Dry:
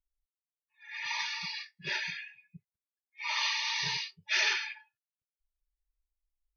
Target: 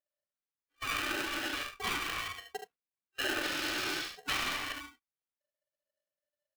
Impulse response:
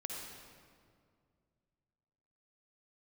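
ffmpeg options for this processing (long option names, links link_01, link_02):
-filter_complex "[0:a]asettb=1/sr,asplit=3[link_01][link_02][link_03];[link_01]atrim=end=0.884[link_04];[link_02]atrim=start=0.88:end=3.44,asetpts=PTS-STARTPTS,afade=type=in:duration=0.004:curve=qsin,afade=type=out:start_time=2.556:duration=0.004:curve=qsin,lowpass=2800[link_05];[link_03]atrim=start=3.436[link_06];[link_04][link_05]acrossfade=duration=0.004:curve1=hsin:curve2=qsin[link_07];[link_07][link_06]acrossfade=duration=0.004:curve1=qsin:curve2=hsin,agate=range=-21dB:threshold=-60dB:ratio=16:detection=peak,equalizer=frequency=920:width=0.45:gain=14.5,acompressor=threshold=-41dB:ratio=10,aecho=1:1:43|73:0.211|0.422,aeval=exprs='val(0)*sgn(sin(2*PI*590*n/s))':channel_layout=same,volume=8dB"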